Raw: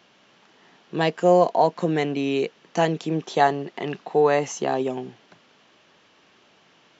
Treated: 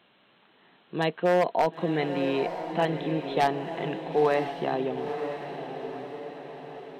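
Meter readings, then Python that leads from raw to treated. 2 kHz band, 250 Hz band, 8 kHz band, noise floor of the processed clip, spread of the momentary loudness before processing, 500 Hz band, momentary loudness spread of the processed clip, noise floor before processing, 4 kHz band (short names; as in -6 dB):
-3.0 dB, -4.0 dB, n/a, -62 dBFS, 13 LU, -4.5 dB, 14 LU, -58 dBFS, -3.5 dB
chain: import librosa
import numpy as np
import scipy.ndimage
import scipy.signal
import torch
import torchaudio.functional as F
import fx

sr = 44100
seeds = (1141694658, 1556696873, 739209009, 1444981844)

y = fx.brickwall_lowpass(x, sr, high_hz=4200.0)
y = 10.0 ** (-10.0 / 20.0) * (np.abs((y / 10.0 ** (-10.0 / 20.0) + 3.0) % 4.0 - 2.0) - 1.0)
y = fx.echo_diffused(y, sr, ms=966, feedback_pct=53, wet_db=-8)
y = F.gain(torch.from_numpy(y), -4.5).numpy()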